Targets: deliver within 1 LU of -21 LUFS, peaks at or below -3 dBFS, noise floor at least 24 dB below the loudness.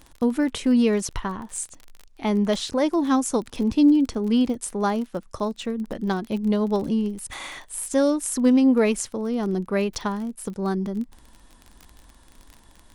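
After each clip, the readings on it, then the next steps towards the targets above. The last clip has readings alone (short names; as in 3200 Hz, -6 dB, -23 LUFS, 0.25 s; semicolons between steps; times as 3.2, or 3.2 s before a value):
ticks 30/s; loudness -23.5 LUFS; peak -7.5 dBFS; loudness target -21.0 LUFS
-> de-click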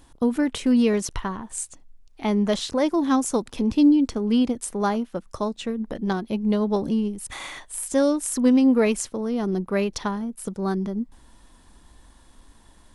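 ticks 0/s; loudness -23.5 LUFS; peak -7.5 dBFS; loudness target -21.0 LUFS
-> gain +2.5 dB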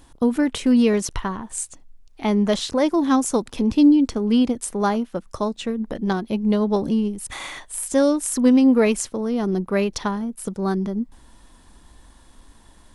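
loudness -21.0 LUFS; peak -5.0 dBFS; noise floor -51 dBFS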